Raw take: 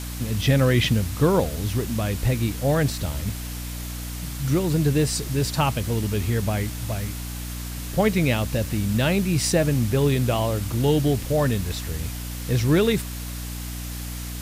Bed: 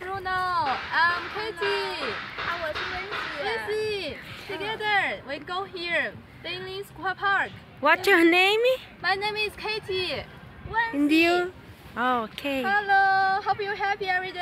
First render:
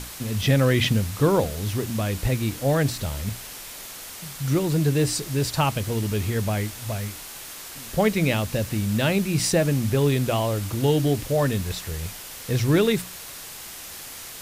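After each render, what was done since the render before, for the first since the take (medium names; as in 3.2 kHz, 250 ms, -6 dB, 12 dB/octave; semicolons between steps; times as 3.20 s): hum notches 60/120/180/240/300 Hz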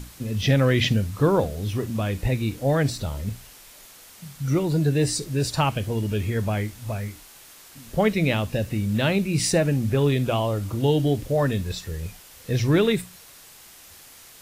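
noise print and reduce 9 dB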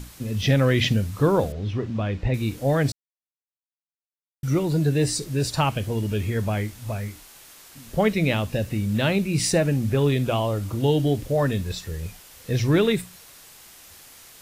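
1.52–2.34 s: distance through air 170 m; 2.92–4.43 s: mute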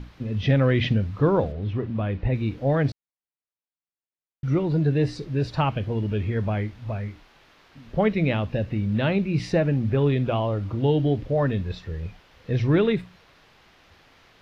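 distance through air 280 m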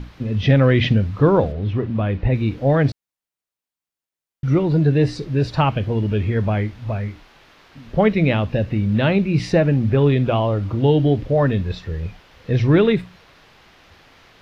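trim +5.5 dB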